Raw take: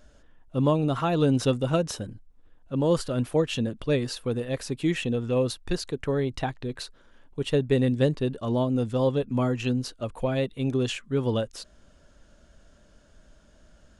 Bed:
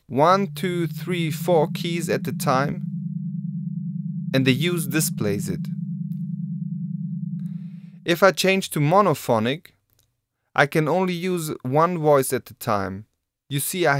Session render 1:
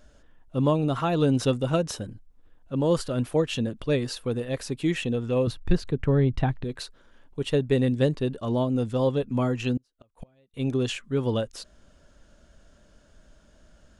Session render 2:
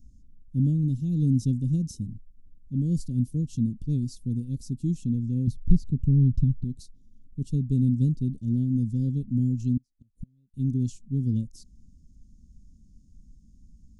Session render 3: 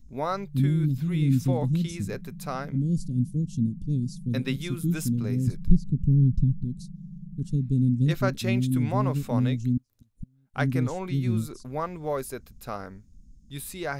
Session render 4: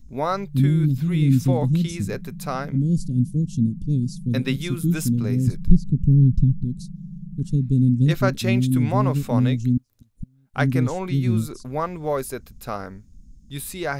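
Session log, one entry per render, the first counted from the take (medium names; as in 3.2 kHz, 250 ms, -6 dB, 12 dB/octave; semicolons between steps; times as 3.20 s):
5.47–6.64 s: tone controls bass +10 dB, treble -10 dB; 9.77–10.54 s: inverted gate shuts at -29 dBFS, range -36 dB
Chebyshev band-stop 240–5800 Hz, order 3; tone controls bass +5 dB, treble -8 dB
add bed -12.5 dB
trim +5 dB; peak limiter -2 dBFS, peak gain reduction 1 dB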